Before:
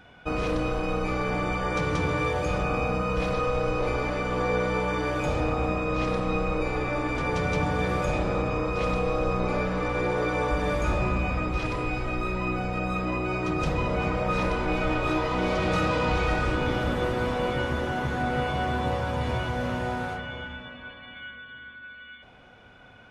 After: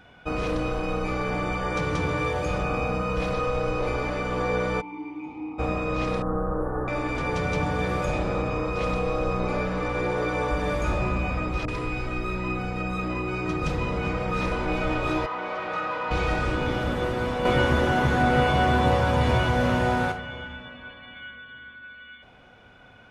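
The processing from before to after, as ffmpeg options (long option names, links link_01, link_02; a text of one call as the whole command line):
ffmpeg -i in.wav -filter_complex "[0:a]asplit=3[link_01][link_02][link_03];[link_01]afade=type=out:start_time=4.8:duration=0.02[link_04];[link_02]asplit=3[link_05][link_06][link_07];[link_05]bandpass=frequency=300:width_type=q:width=8,volume=0dB[link_08];[link_06]bandpass=frequency=870:width_type=q:width=8,volume=-6dB[link_09];[link_07]bandpass=frequency=2240:width_type=q:width=8,volume=-9dB[link_10];[link_08][link_09][link_10]amix=inputs=3:normalize=0,afade=type=in:start_time=4.8:duration=0.02,afade=type=out:start_time=5.58:duration=0.02[link_11];[link_03]afade=type=in:start_time=5.58:duration=0.02[link_12];[link_04][link_11][link_12]amix=inputs=3:normalize=0,asettb=1/sr,asplit=3[link_13][link_14][link_15];[link_13]atrim=end=6.224[link_16];[link_14]atrim=start=6.22:end=6.88,asetpts=PTS-STARTPTS,afade=type=in:duration=0.004:curve=qsin,afade=type=out:start_time=0.656:duration=0.004:curve=qsin,asuperstop=centerf=4300:order=20:qfactor=0.54[link_17];[link_15]atrim=start=6.876[link_18];[link_16][link_17]acrossfade=duration=0.004:curve1=hsin:curve2=qsin[link_19];[link_19][link_18]acrossfade=duration=0.004:curve1=qsin:curve2=hsin,asettb=1/sr,asplit=3[link_20][link_21][link_22];[link_20]atrim=end=11.654[link_23];[link_21]atrim=start=11.65:end=14.52,asetpts=PTS-STARTPTS,afade=type=in:duration=0.004:curve=qsin,afade=type=out:start_time=2.866:duration=0.004:curve=qsin,acrossover=split=690[link_24][link_25];[link_25]adelay=30[link_26];[link_24][link_26]amix=inputs=2:normalize=0,atrim=end_sample=126567[link_27];[link_22]atrim=start=14.516[link_28];[link_23][link_27]acrossfade=duration=0.004:curve1=hsin:curve2=qsin[link_29];[link_29][link_28]acrossfade=duration=0.004:curve1=qsin:curve2=hsin,asplit=3[link_30][link_31][link_32];[link_30]afade=type=out:start_time=15.25:duration=0.02[link_33];[link_31]bandpass=frequency=1200:width_type=q:width=0.96,afade=type=in:start_time=15.25:duration=0.02,afade=type=out:start_time=16.1:duration=0.02[link_34];[link_32]afade=type=in:start_time=16.1:duration=0.02[link_35];[link_33][link_34][link_35]amix=inputs=3:normalize=0,asettb=1/sr,asplit=3[link_36][link_37][link_38];[link_36]atrim=end=17.454[link_39];[link_37]atrim=start=17.45:end=20.12,asetpts=PTS-STARTPTS,afade=type=in:duration=0.004:curve=qsin,afade=type=out:start_time=2.666:duration=0.004:curve=qsin,acontrast=65[link_40];[link_38]atrim=start=20.116[link_41];[link_39][link_40]acrossfade=duration=0.004:curve1=hsin:curve2=qsin[link_42];[link_42][link_41]acrossfade=duration=0.004:curve1=qsin:curve2=hsin" out.wav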